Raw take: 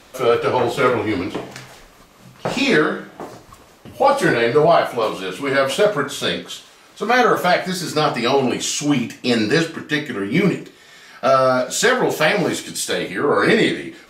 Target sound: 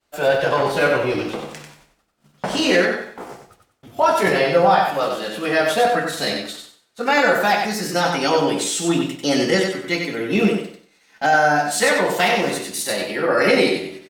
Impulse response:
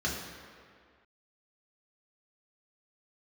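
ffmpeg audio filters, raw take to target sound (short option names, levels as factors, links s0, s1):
-af "agate=range=0.0224:threshold=0.02:ratio=3:detection=peak,asetrate=50951,aresample=44100,atempo=0.865537,aecho=1:1:94|188|282|376:0.562|0.152|0.041|0.0111,volume=0.794"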